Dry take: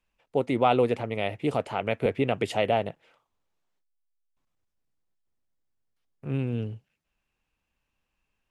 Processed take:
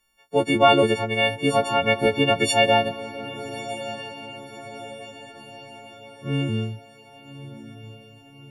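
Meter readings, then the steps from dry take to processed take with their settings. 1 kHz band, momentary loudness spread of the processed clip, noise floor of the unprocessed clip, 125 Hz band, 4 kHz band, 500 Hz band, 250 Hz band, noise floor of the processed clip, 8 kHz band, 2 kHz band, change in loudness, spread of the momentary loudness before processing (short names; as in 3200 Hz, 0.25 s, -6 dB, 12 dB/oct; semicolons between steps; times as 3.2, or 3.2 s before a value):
+7.0 dB, 23 LU, -81 dBFS, +4.0 dB, +14.5 dB, +5.5 dB, +5.0 dB, -50 dBFS, +17.5 dB, +12.0 dB, +5.5 dB, 12 LU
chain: frequency quantiser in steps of 4 st; diffused feedback echo 1.185 s, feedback 51%, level -13.5 dB; gain +4.5 dB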